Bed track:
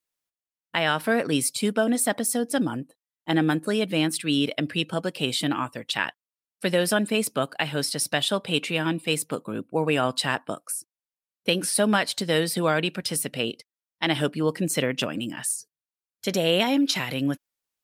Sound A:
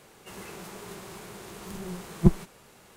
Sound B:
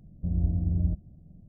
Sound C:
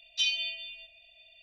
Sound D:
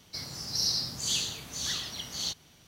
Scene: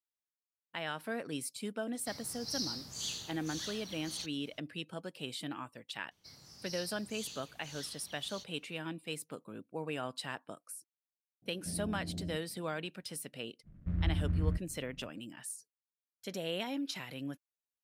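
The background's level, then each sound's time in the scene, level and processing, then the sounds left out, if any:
bed track -15.5 dB
1.93 s: add D -9.5 dB
6.11 s: add D -16.5 dB
11.42 s: add B -3 dB + high-pass 230 Hz
13.63 s: add B -5.5 dB, fades 0.05 s + delay time shaken by noise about 1.4 kHz, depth 0.037 ms
not used: A, C

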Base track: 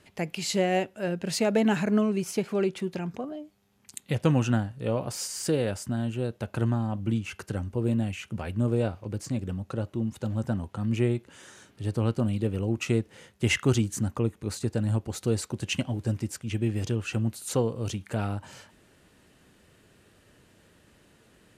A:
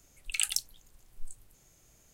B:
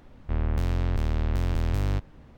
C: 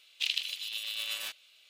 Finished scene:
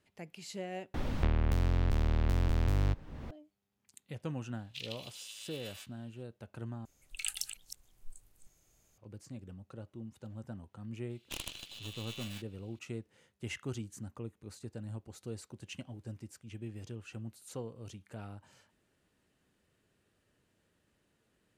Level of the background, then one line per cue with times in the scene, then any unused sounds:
base track -16 dB
0.94 s: replace with B -3.5 dB + three bands compressed up and down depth 100%
4.54 s: add C -13 dB
6.85 s: replace with A -7.5 dB + chunks repeated in reverse 180 ms, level -9 dB
11.10 s: add C -10.5 dB + tracing distortion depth 0.16 ms

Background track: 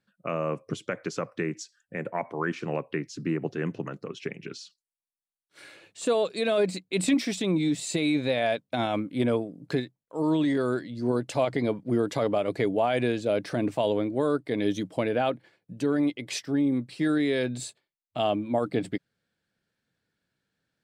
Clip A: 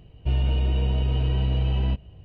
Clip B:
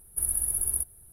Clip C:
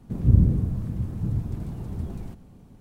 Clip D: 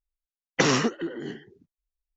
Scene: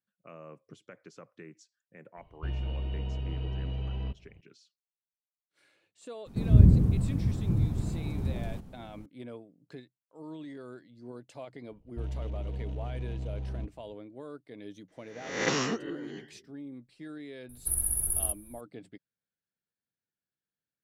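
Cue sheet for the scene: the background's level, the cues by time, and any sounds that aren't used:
background track -18.5 dB
2.17 s: add A -11 dB
6.26 s: add C
11.71 s: add A -13 dB + local Wiener filter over 25 samples
14.88 s: add D -9 dB + reverse spectral sustain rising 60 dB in 0.71 s
17.49 s: add B -2 dB + bass shelf 350 Hz +5 dB

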